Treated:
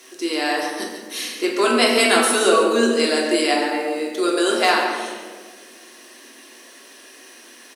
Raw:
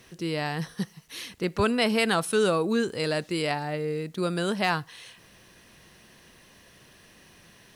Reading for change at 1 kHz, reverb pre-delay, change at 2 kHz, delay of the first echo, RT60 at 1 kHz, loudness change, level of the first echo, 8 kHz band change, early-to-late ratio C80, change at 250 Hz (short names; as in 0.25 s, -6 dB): +9.5 dB, 3 ms, +9.5 dB, 0.14 s, 1.3 s, +8.5 dB, -9.5 dB, +14.0 dB, 3.5 dB, +6.5 dB